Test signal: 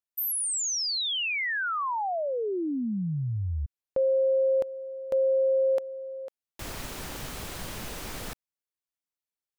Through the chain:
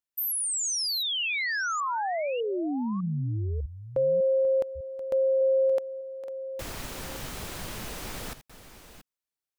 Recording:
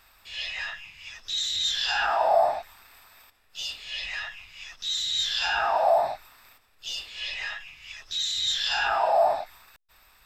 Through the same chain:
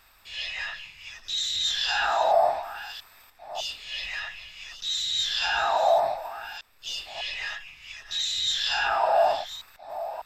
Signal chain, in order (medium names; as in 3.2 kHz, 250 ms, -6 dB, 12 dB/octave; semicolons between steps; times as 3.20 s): chunks repeated in reverse 601 ms, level -12.5 dB